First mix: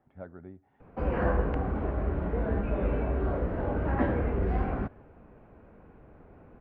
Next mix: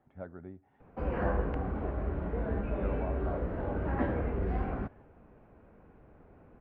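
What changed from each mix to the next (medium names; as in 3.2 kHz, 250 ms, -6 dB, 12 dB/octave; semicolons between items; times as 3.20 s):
background -4.0 dB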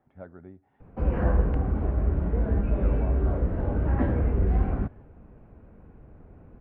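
background: add bass shelf 260 Hz +11 dB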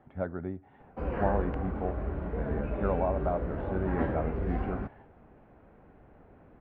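speech +10.0 dB; background: add bass shelf 260 Hz -11 dB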